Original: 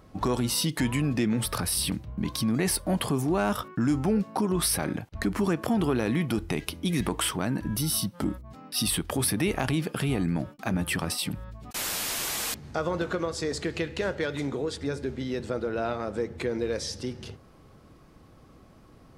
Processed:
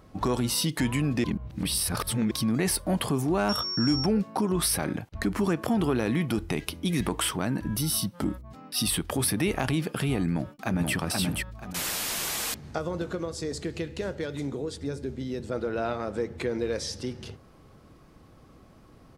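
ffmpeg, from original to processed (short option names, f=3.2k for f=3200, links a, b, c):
-filter_complex "[0:a]asettb=1/sr,asplit=3[a][b][c];[a]atrim=end=3.494[d];[b]atrim=start=3.49:end=4.06,asetpts=PTS-STARTPTS,afade=t=in:d=0.004:c=qsin,afade=t=out:st=0.566:d=0.004:c=qsin,aeval=exprs='val(0)+0.0355*sin(2*PI*5500*n/s)':c=same[e];[c]atrim=start=4.056[f];[d][e]acrossfade=d=0.004:c1=hsin:c2=qsin[g];[g][f]acrossfade=d=0.004:c1=qsin:c2=hsin,asplit=2[h][i];[i]afade=t=in:st=10.32:d=0.01,afade=t=out:st=10.94:d=0.01,aecho=0:1:480|960|1440|1920:0.749894|0.224968|0.0674905|0.0202471[j];[h][j]amix=inputs=2:normalize=0,asettb=1/sr,asplit=3[k][l][m];[k]atrim=end=12.784[n];[l]atrim=start=12.78:end=15.52,asetpts=PTS-STARTPTS,afade=t=in:d=0.004:c=qsin,afade=t=out:st=2.736:d=0.004:c=qsin,equalizer=f=1.6k:w=0.39:g=-7.5[o];[m]atrim=start=15.516[p];[n][o]acrossfade=d=0.004:c1=hsin:c2=qsin[q];[q][p]acrossfade=d=0.004:c1=qsin:c2=hsin,asplit=3[r][s][t];[r]atrim=end=1.242[u];[s]atrim=start=1.238:end=2.312,asetpts=PTS-STARTPTS,areverse[v];[t]atrim=start=2.308[w];[u][v]acrossfade=d=0.004:c1=hsin:c2=hsin[x];[x][w]acrossfade=d=0.004:c1=hsin:c2=hsin"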